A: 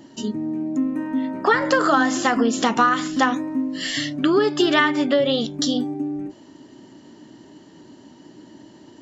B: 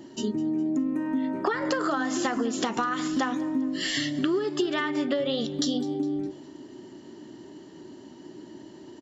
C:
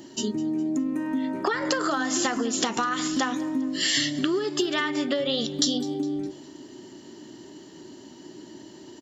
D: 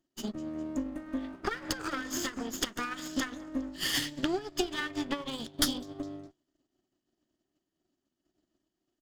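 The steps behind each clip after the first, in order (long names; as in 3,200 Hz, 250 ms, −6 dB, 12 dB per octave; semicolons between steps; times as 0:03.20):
parametric band 370 Hz +8 dB 0.3 octaves; downward compressor 10 to 1, threshold −21 dBFS, peak gain reduction 13.5 dB; repeating echo 205 ms, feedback 47%, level −19.5 dB; level −2 dB
high-shelf EQ 3,100 Hz +10 dB
lower of the sound and its delayed copy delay 0.61 ms; expander for the loud parts 2.5 to 1, over −47 dBFS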